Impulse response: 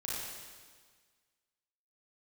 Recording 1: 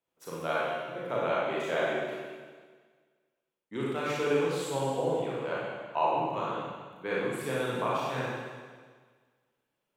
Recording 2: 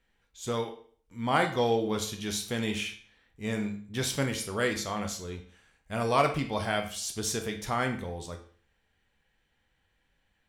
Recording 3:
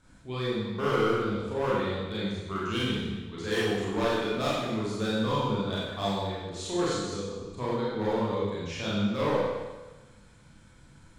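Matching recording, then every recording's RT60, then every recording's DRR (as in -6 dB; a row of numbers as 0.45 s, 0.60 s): 1; 1.6 s, 0.50 s, 1.2 s; -7.0 dB, 4.0 dB, -8.0 dB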